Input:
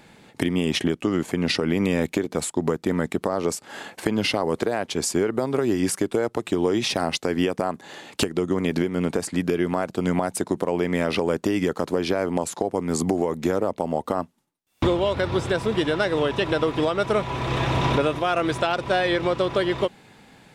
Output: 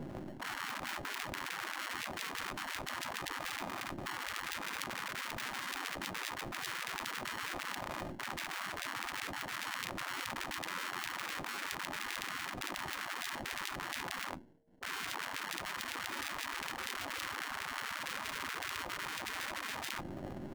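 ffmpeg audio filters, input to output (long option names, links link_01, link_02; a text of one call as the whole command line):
ffmpeg -i in.wav -filter_complex "[0:a]aecho=1:1:20|43|69.45|99.87|134.8:0.631|0.398|0.251|0.158|0.1,acrossover=split=270|4000[link_01][link_02][link_03];[link_02]alimiter=limit=-17.5dB:level=0:latency=1:release=137[link_04];[link_01][link_04][link_03]amix=inputs=3:normalize=0,acrusher=samples=36:mix=1:aa=0.000001,aeval=exprs='max(val(0),0)':channel_layout=same,equalizer=frequency=250:width_type=o:width=1.7:gain=7.5,areverse,acompressor=threshold=-29dB:ratio=10,areverse,aeval=exprs='0.158*(cos(1*acos(clip(val(0)/0.158,-1,1)))-cos(1*PI/2))+0.00562*(cos(2*acos(clip(val(0)/0.158,-1,1)))-cos(2*PI/2))+0.0562*(cos(8*acos(clip(val(0)/0.158,-1,1)))-cos(8*PI/2))':channel_layout=same,aeval=exprs='val(0)+0.00447*sin(2*PI*460*n/s)':channel_layout=same,afftfilt=real='re*lt(hypot(re,im),0.0178)':imag='im*lt(hypot(re,im),0.0178)':win_size=1024:overlap=0.75,highshelf=frequency=2300:gain=-11,volume=12dB" out.wav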